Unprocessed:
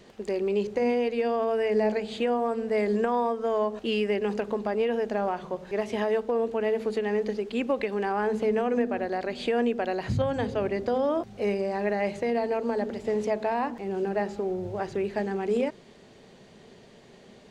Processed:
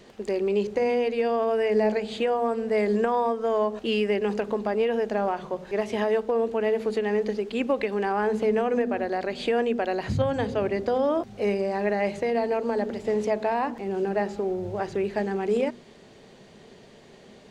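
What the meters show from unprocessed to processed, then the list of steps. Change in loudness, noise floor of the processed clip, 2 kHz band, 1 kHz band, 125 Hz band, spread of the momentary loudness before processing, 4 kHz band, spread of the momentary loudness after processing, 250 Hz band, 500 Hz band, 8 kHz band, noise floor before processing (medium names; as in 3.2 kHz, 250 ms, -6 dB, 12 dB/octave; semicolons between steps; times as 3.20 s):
+2.0 dB, -51 dBFS, +2.0 dB, +2.0 dB, +1.5 dB, 5 LU, +2.0 dB, 5 LU, +1.0 dB, +2.0 dB, no reading, -53 dBFS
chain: hum notches 60/120/180/240 Hz; trim +2 dB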